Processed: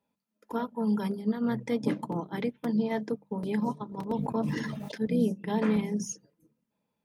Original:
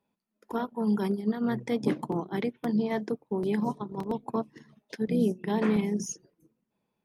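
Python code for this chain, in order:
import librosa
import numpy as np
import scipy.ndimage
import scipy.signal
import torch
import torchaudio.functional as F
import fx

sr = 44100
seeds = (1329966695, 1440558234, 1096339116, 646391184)

y = fx.hum_notches(x, sr, base_hz=50, count=4)
y = fx.notch_comb(y, sr, f0_hz=370.0)
y = fx.sustainer(y, sr, db_per_s=26.0, at=(4.08, 5.07))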